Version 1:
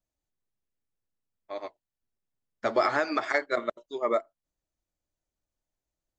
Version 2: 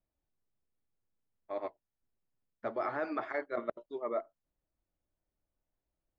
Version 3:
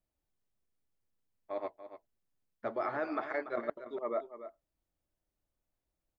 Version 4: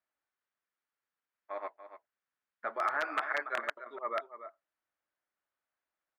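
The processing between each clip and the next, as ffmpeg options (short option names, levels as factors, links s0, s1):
-af "lowpass=3300,highshelf=f=2100:g=-11.5,areverse,acompressor=threshold=0.02:ratio=6,areverse,volume=1.26"
-af "aecho=1:1:288:0.251"
-af "aeval=exprs='(mod(15*val(0)+1,2)-1)/15':c=same,bandpass=f=1500:t=q:w=1.8:csg=0,volume=2.66"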